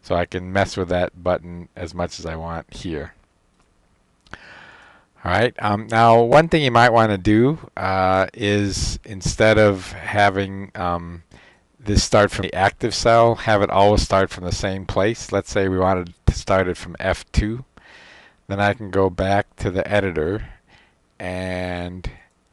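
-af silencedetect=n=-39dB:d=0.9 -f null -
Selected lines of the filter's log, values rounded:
silence_start: 3.10
silence_end: 4.27 | silence_duration: 1.16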